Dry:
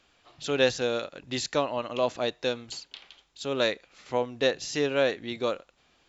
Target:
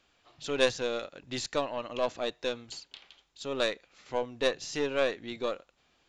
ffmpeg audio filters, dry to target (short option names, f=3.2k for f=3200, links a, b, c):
-af "aeval=exprs='0.335*(cos(1*acos(clip(val(0)/0.335,-1,1)))-cos(1*PI/2))+0.0422*(cos(3*acos(clip(val(0)/0.335,-1,1)))-cos(3*PI/2))+0.0299*(cos(4*acos(clip(val(0)/0.335,-1,1)))-cos(4*PI/2))':c=same,aresample=22050,aresample=44100"